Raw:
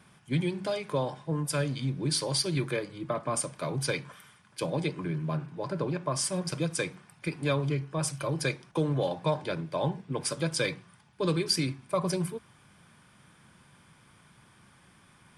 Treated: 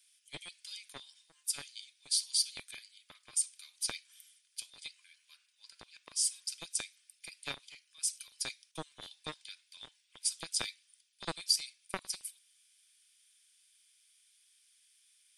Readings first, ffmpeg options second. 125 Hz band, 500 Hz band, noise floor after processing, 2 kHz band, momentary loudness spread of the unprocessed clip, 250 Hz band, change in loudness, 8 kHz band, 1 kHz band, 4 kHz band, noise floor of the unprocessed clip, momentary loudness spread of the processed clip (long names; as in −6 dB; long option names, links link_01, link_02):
−28.5 dB, −23.5 dB, −73 dBFS, −10.5 dB, 6 LU, −24.5 dB, −5.5 dB, +1.0 dB, −15.0 dB, −1.5 dB, −60 dBFS, 20 LU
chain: -filter_complex "[0:a]highshelf=frequency=3200:gain=5.5,acrossover=split=2800[link_01][link_02];[link_01]acrusher=bits=2:mix=0:aa=0.5[link_03];[link_03][link_02]amix=inputs=2:normalize=0,volume=-4dB"